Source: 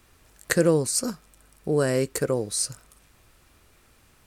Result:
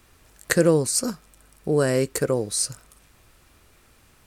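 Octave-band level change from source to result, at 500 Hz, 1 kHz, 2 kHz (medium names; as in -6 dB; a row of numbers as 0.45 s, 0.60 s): +2.0 dB, +2.0 dB, +2.0 dB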